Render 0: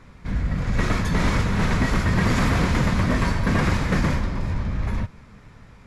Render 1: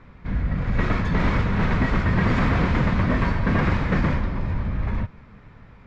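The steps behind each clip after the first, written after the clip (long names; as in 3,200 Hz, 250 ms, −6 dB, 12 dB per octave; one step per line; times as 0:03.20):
low-pass filter 3,000 Hz 12 dB per octave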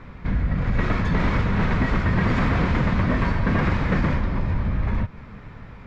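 downward compressor 2 to 1, threshold −29 dBFS, peak gain reduction 7.5 dB
level +6.5 dB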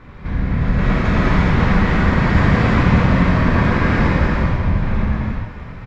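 single-tap delay 1,175 ms −20.5 dB
reverb whose tail is shaped and stops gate 450 ms flat, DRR −7 dB
level −1 dB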